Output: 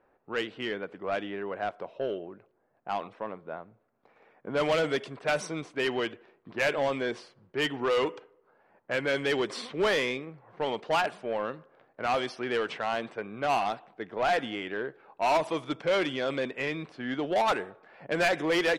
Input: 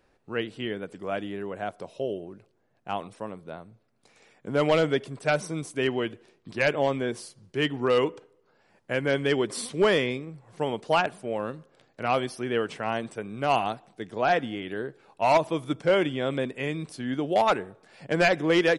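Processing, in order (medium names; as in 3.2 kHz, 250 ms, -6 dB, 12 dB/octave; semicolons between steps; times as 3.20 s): level-controlled noise filter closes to 1.2 kHz, open at -19.5 dBFS; overdrive pedal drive 16 dB, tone 5.5 kHz, clips at -13.5 dBFS; trim -5.5 dB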